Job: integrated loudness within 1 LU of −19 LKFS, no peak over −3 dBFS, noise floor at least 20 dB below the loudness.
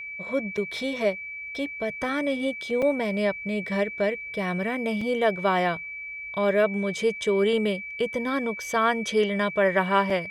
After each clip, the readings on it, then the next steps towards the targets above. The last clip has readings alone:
number of dropouts 4; longest dropout 4.3 ms; interfering tone 2,300 Hz; level of the tone −34 dBFS; integrated loudness −26.0 LKFS; sample peak −9.0 dBFS; target loudness −19.0 LKFS
→ repair the gap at 0:00.57/0:02.82/0:05.01/0:10.10, 4.3 ms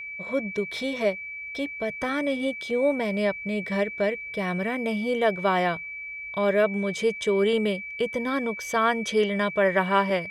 number of dropouts 0; interfering tone 2,300 Hz; level of the tone −34 dBFS
→ notch filter 2,300 Hz, Q 30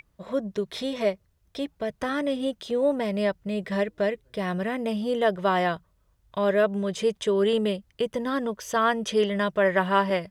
interfering tone none found; integrated loudness −26.5 LKFS; sample peak −9.5 dBFS; target loudness −19.0 LKFS
→ level +7.5 dB
brickwall limiter −3 dBFS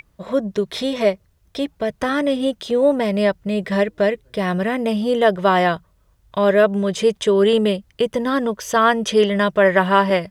integrated loudness −19.0 LKFS; sample peak −3.0 dBFS; background noise floor −60 dBFS

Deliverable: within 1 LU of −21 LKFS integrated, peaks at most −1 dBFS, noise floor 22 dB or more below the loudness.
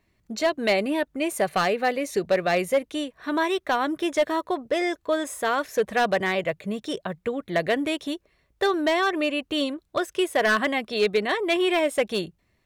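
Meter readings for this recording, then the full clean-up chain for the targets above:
share of clipped samples 1.0%; peaks flattened at −15.0 dBFS; integrated loudness −25.0 LKFS; sample peak −15.0 dBFS; target loudness −21.0 LKFS
→ clipped peaks rebuilt −15 dBFS
level +4 dB

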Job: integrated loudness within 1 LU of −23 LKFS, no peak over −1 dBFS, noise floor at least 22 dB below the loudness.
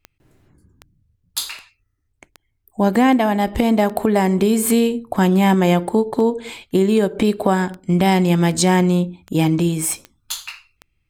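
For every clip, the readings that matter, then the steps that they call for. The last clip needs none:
number of clicks 15; integrated loudness −17.5 LKFS; sample peak −3.5 dBFS; target loudness −23.0 LKFS
→ click removal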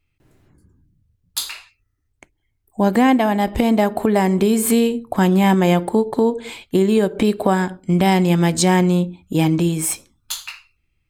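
number of clicks 0; integrated loudness −17.5 LKFS; sample peak −3.5 dBFS; target loudness −23.0 LKFS
→ level −5.5 dB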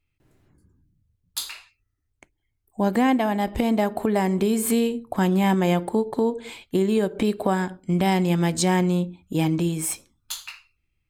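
integrated loudness −23.0 LKFS; sample peak −9.0 dBFS; background noise floor −75 dBFS

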